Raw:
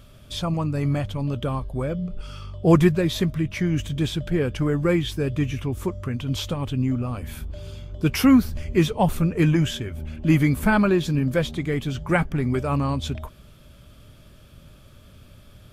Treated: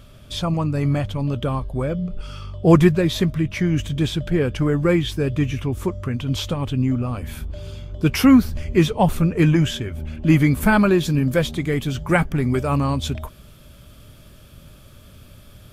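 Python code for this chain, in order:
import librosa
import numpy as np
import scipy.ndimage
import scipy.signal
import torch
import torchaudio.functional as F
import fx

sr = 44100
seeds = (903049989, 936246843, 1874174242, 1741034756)

y = fx.high_shelf(x, sr, hz=8200.0, db=fx.steps((0.0, -2.5), (10.6, 6.5)))
y = y * librosa.db_to_amplitude(3.0)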